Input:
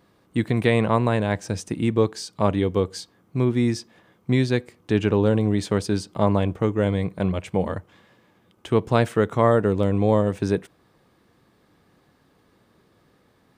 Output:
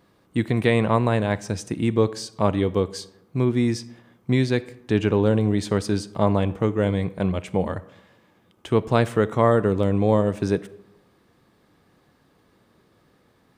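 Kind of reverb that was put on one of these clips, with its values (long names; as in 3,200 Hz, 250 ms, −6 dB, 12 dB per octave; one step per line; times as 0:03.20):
comb and all-pass reverb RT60 0.89 s, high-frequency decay 0.6×, pre-delay 0 ms, DRR 17 dB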